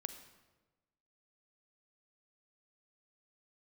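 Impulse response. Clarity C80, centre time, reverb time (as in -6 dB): 11.5 dB, 14 ms, 1.2 s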